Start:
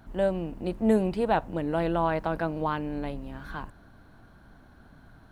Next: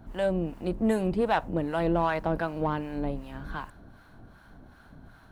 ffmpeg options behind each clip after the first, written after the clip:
-filter_complex "[0:a]acrossover=split=790[a][b];[a]aeval=exprs='val(0)*(1-0.7/2+0.7/2*cos(2*PI*2.6*n/s))':c=same[c];[b]aeval=exprs='val(0)*(1-0.7/2-0.7/2*cos(2*PI*2.6*n/s))':c=same[d];[c][d]amix=inputs=2:normalize=0,asplit=2[e][f];[f]asoftclip=type=tanh:threshold=-30.5dB,volume=-6dB[g];[e][g]amix=inputs=2:normalize=0,volume=1.5dB"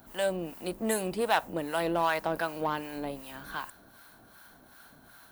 -af "aemphasis=mode=production:type=riaa"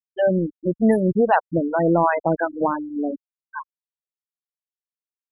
-af "afftfilt=real='re*gte(hypot(re,im),0.0794)':imag='im*gte(hypot(re,im),0.0794)':win_size=1024:overlap=0.75,aemphasis=mode=reproduction:type=riaa,volume=8.5dB"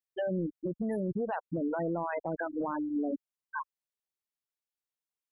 -af "acompressor=threshold=-23dB:ratio=6,alimiter=limit=-24dB:level=0:latency=1:release=34,volume=-1.5dB"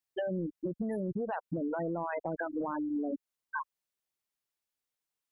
-af "acompressor=threshold=-36dB:ratio=3,volume=3.5dB"

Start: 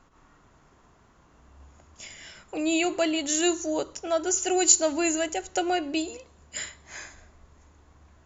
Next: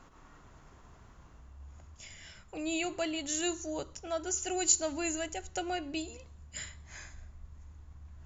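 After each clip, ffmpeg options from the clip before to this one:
-af "asubboost=boost=5:cutoff=160,areverse,acompressor=mode=upward:threshold=-38dB:ratio=2.5,areverse,volume=-7.5dB"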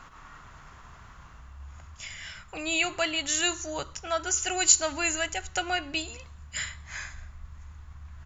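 -af "firequalizer=gain_entry='entry(140,0);entry(310,-7);entry(1200,7);entry(6500,1)':delay=0.05:min_phase=1,volume=5.5dB"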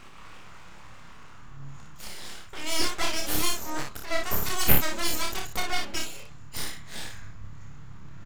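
-filter_complex "[0:a]aeval=exprs='abs(val(0))':c=same,asplit=2[a][b];[b]aecho=0:1:29|58:0.596|0.562[c];[a][c]amix=inputs=2:normalize=0,volume=1dB"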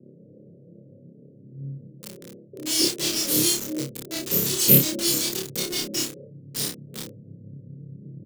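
-filter_complex "[0:a]acrossover=split=3100[a][b];[a]asuperpass=centerf=250:order=20:qfactor=0.56[c];[b]acrusher=bits=5:mix=0:aa=0.000001[d];[c][d]amix=inputs=2:normalize=0,asplit=2[e][f];[f]adelay=29,volume=-5dB[g];[e][g]amix=inputs=2:normalize=0,volume=6dB"

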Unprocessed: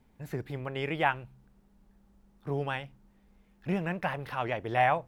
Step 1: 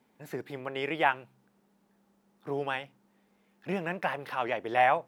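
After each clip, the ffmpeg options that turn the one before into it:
-af "highpass=250,volume=1.5dB"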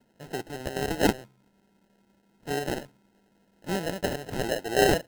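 -af "acrusher=samples=38:mix=1:aa=0.000001,volume=3dB"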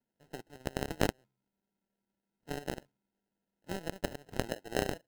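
-af "acompressor=threshold=-25dB:ratio=8,aeval=exprs='0.168*(cos(1*acos(clip(val(0)/0.168,-1,1)))-cos(1*PI/2))+0.0531*(cos(3*acos(clip(val(0)/0.168,-1,1)))-cos(3*PI/2))+0.00106*(cos(6*acos(clip(val(0)/0.168,-1,1)))-cos(6*PI/2))':c=same,volume=4dB"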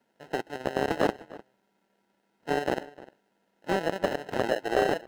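-filter_complex "[0:a]asplit=2[a][b];[b]highpass=f=720:p=1,volume=27dB,asoftclip=type=tanh:threshold=-9dB[c];[a][c]amix=inputs=2:normalize=0,lowpass=f=1.7k:p=1,volume=-6dB,asplit=2[d][e];[e]adelay=303.2,volume=-19dB,highshelf=f=4k:g=-6.82[f];[d][f]amix=inputs=2:normalize=0,volume=1dB"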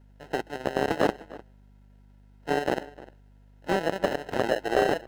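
-af "aeval=exprs='val(0)+0.00178*(sin(2*PI*50*n/s)+sin(2*PI*2*50*n/s)/2+sin(2*PI*3*50*n/s)/3+sin(2*PI*4*50*n/s)/4+sin(2*PI*5*50*n/s)/5)':c=same,volume=1.5dB"

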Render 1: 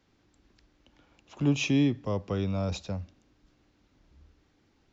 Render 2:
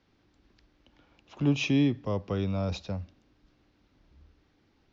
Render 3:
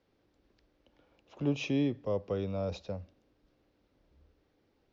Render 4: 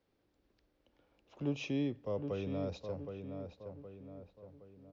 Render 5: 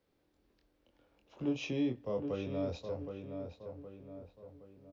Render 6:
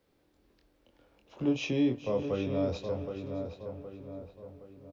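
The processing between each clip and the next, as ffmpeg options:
-af "lowpass=f=5.7k:w=0.5412,lowpass=f=5.7k:w=1.3066"
-af "equalizer=f=510:w=1.6:g=9.5,volume=-7.5dB"
-filter_complex "[0:a]asplit=2[a][b];[b]adelay=768,lowpass=f=2.1k:p=1,volume=-6.5dB,asplit=2[c][d];[d]adelay=768,lowpass=f=2.1k:p=1,volume=0.47,asplit=2[e][f];[f]adelay=768,lowpass=f=2.1k:p=1,volume=0.47,asplit=2[g][h];[h]adelay=768,lowpass=f=2.1k:p=1,volume=0.47,asplit=2[i][j];[j]adelay=768,lowpass=f=2.1k:p=1,volume=0.47,asplit=2[k][l];[l]adelay=768,lowpass=f=2.1k:p=1,volume=0.47[m];[a][c][e][g][i][k][m]amix=inputs=7:normalize=0,volume=-5dB"
-filter_complex "[0:a]asplit=2[a][b];[b]adelay=24,volume=-4dB[c];[a][c]amix=inputs=2:normalize=0"
-af "aecho=1:1:421|611:0.178|0.106,volume=5.5dB"

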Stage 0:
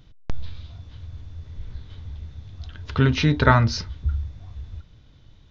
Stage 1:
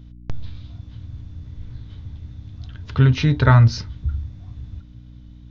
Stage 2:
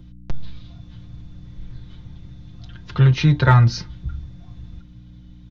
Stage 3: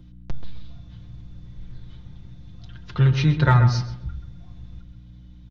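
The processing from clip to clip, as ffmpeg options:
-af "equalizer=f=120:t=o:w=0.61:g=10,aeval=exprs='val(0)+0.0112*(sin(2*PI*60*n/s)+sin(2*PI*2*60*n/s)/2+sin(2*PI*3*60*n/s)/3+sin(2*PI*4*60*n/s)/4+sin(2*PI*5*60*n/s)/5)':c=same,volume=-2dB"
-filter_complex "[0:a]aecho=1:1:5.7:0.74,acrossover=split=130|1500[a][b][c];[b]aeval=exprs='clip(val(0),-1,0.266)':c=same[d];[a][d][c]amix=inputs=3:normalize=0,volume=-1dB"
-filter_complex "[0:a]asplit=2[a][b];[b]adelay=132,lowpass=f=1.8k:p=1,volume=-8dB,asplit=2[c][d];[d]adelay=132,lowpass=f=1.8k:p=1,volume=0.33,asplit=2[e][f];[f]adelay=132,lowpass=f=1.8k:p=1,volume=0.33,asplit=2[g][h];[h]adelay=132,lowpass=f=1.8k:p=1,volume=0.33[i];[a][c][e][g][i]amix=inputs=5:normalize=0,volume=-3.5dB"

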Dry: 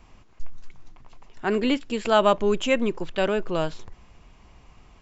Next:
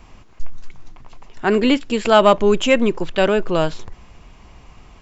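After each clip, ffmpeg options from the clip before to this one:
-af "acontrast=35,volume=2dB"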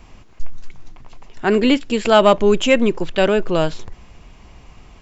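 -af "equalizer=f=1.1k:w=1.5:g=-2.5,volume=1dB"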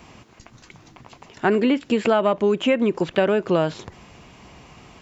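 -filter_complex "[0:a]acrossover=split=2700[a][b];[b]acompressor=threshold=-41dB:ratio=4:attack=1:release=60[c];[a][c]amix=inputs=2:normalize=0,highpass=110,acompressor=threshold=-18dB:ratio=10,volume=3dB"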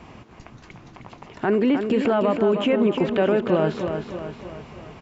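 -af "lowpass=f=1.9k:p=1,alimiter=limit=-16dB:level=0:latency=1,aecho=1:1:310|620|930|1240|1550|1860:0.447|0.228|0.116|0.0593|0.0302|0.0154,volume=3.5dB"

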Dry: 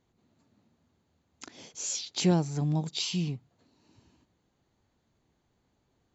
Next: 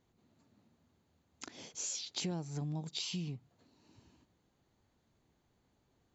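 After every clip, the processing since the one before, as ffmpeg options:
-af "acompressor=threshold=-35dB:ratio=5,volume=-1.5dB"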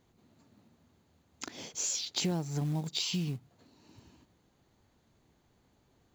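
-af "acrusher=bits=6:mode=log:mix=0:aa=0.000001,volume=6dB"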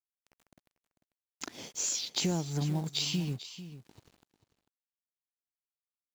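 -af "aeval=exprs='sgn(val(0))*max(abs(val(0))-0.00158,0)':c=same,acompressor=mode=upward:threshold=-50dB:ratio=2.5,aecho=1:1:445:0.211,volume=1.5dB"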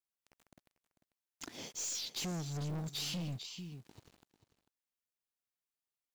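-af "aeval=exprs='(tanh(63.1*val(0)+0.1)-tanh(0.1))/63.1':c=same"

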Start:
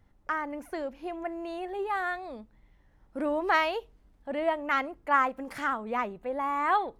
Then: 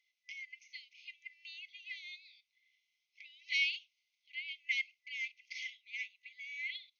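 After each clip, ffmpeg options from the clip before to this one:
-af "afftfilt=real='re*between(b*sr/4096,2000,6600)':imag='im*between(b*sr/4096,2000,6600)':win_size=4096:overlap=0.75,volume=2.5dB"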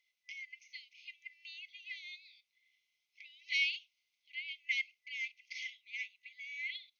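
-af "acontrast=65,volume=-6.5dB"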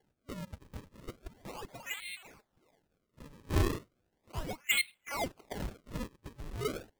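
-af "acrusher=samples=35:mix=1:aa=0.000001:lfo=1:lforange=56:lforate=0.36,volume=5.5dB"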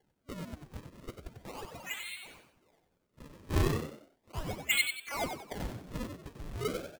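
-filter_complex "[0:a]asplit=5[a][b][c][d][e];[b]adelay=93,afreqshift=64,volume=-6.5dB[f];[c]adelay=186,afreqshift=128,volume=-15.4dB[g];[d]adelay=279,afreqshift=192,volume=-24.2dB[h];[e]adelay=372,afreqshift=256,volume=-33.1dB[i];[a][f][g][h][i]amix=inputs=5:normalize=0"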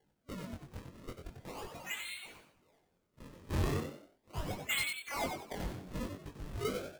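-af "asoftclip=type=hard:threshold=-28.5dB,flanger=delay=20:depth=2.9:speed=0.46,volume=2dB"

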